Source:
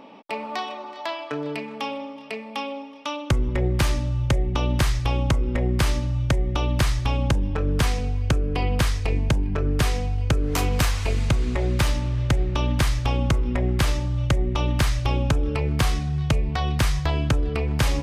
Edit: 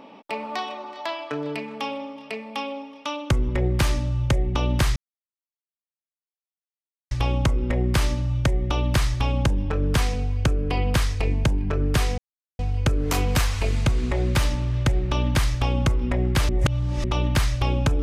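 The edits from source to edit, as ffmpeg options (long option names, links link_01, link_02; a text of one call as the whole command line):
ffmpeg -i in.wav -filter_complex "[0:a]asplit=5[link_01][link_02][link_03][link_04][link_05];[link_01]atrim=end=4.96,asetpts=PTS-STARTPTS,afade=type=out:start_time=4.956:duration=0.004:curve=hsin,apad=pad_dur=2.15[link_06];[link_02]atrim=start=4.96:end=10.03,asetpts=PTS-STARTPTS,afade=type=in:duration=0.004:curve=hsin,afade=type=out:start_time=5.066:duration=0.004:curve=hsin,apad=pad_dur=0.41[link_07];[link_03]atrim=start=10.03:end=13.932,asetpts=PTS-STARTPTS,afade=type=in:duration=0.004:curve=hsin[link_08];[link_04]atrim=start=13.928:end=14.482,asetpts=PTS-STARTPTS,areverse[link_09];[link_05]atrim=start=14.478[link_10];[link_06][link_07][link_08]concat=n=3:v=0:a=1[link_11];[link_11][link_09]acrossfade=duration=0.004:curve1=hsin:curve2=hsin[link_12];[link_12][link_10]acrossfade=duration=0.004:curve1=hsin:curve2=hsin" out.wav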